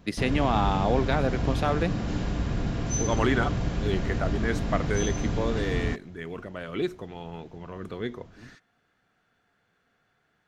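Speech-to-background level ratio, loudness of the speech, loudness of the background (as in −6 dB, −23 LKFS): 0.0 dB, −30.0 LKFS, −30.0 LKFS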